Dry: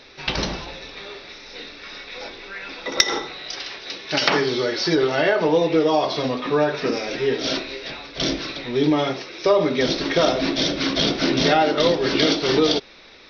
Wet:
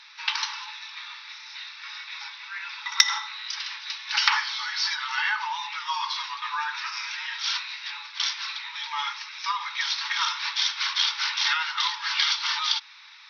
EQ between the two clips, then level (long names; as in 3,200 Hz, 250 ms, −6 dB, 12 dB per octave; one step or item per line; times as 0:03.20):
linear-phase brick-wall high-pass 830 Hz
−1.0 dB